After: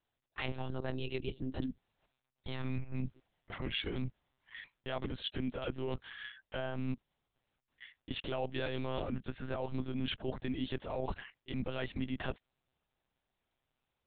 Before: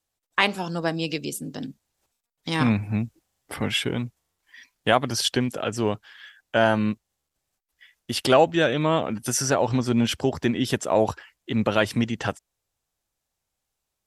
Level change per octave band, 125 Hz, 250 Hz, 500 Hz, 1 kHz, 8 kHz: -12.0 dB, -14.5 dB, -16.5 dB, -19.0 dB, under -40 dB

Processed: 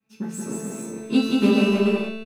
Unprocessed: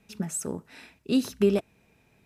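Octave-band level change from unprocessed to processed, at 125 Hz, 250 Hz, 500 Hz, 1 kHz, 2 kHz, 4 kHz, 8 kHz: +6.0 dB, +8.5 dB, +4.5 dB, +11.5 dB, +13.0 dB, +9.0 dB, -0.5 dB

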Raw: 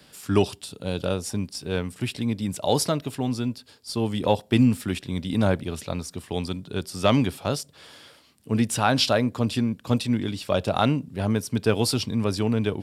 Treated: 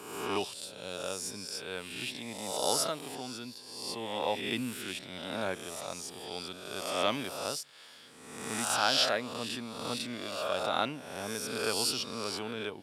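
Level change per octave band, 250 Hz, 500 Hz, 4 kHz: -16.0 dB, -9.0 dB, -2.5 dB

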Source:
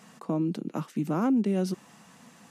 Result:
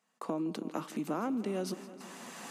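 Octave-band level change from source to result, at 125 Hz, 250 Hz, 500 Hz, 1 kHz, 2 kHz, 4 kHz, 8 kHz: -12.5 dB, -8.5 dB, -4.5 dB, -3.0 dB, -1.0 dB, +0.5 dB, no reading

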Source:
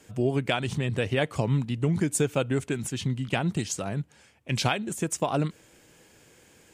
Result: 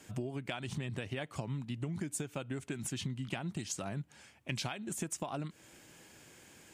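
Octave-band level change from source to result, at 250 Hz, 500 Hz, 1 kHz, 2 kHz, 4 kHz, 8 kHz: -11.5 dB, -14.5 dB, -12.5 dB, -11.5 dB, -10.0 dB, -8.0 dB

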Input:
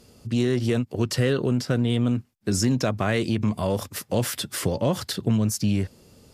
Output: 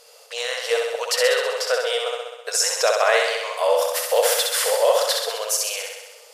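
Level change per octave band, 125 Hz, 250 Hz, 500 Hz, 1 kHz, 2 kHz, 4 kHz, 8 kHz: under -40 dB, under -35 dB, +7.5 dB, +9.5 dB, +9.5 dB, +9.5 dB, +9.5 dB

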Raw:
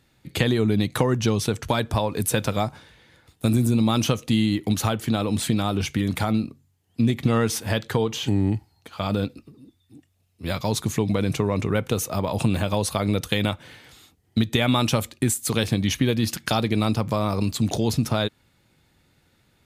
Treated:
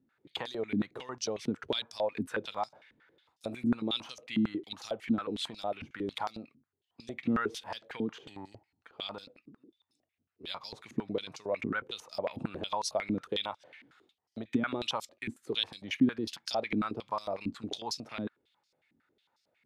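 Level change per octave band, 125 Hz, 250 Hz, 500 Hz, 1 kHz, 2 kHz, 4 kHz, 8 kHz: -22.5 dB, -11.0 dB, -10.5 dB, -9.0 dB, -9.5 dB, -8.0 dB, -16.5 dB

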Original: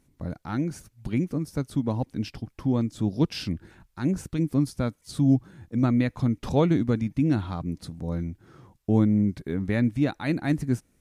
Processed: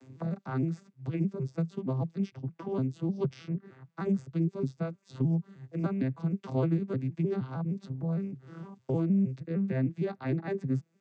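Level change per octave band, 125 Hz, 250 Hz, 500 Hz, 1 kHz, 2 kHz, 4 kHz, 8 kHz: -4.5 dB, -6.5 dB, -3.5 dB, -7.0 dB, -9.5 dB, under -15 dB, under -15 dB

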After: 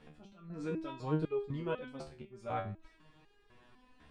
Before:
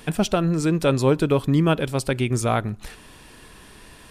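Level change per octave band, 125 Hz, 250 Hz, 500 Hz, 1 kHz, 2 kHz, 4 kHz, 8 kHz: -19.0 dB, -18.5 dB, -16.5 dB, -15.0 dB, -19.5 dB, -24.0 dB, under -30 dB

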